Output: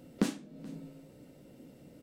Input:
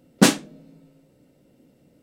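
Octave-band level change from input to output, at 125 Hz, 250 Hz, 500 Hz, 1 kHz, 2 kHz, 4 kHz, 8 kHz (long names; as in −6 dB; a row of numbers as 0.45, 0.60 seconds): −13.5, −13.0, −15.0, −19.0, −21.0, −21.5, −22.0 decibels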